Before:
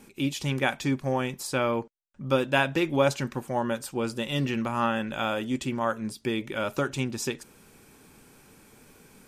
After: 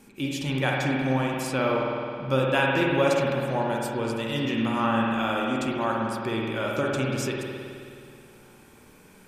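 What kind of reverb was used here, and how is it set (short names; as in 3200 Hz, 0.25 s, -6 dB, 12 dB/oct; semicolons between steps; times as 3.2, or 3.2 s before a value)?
spring tank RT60 2.4 s, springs 53 ms, chirp 55 ms, DRR -2 dB; gain -1.5 dB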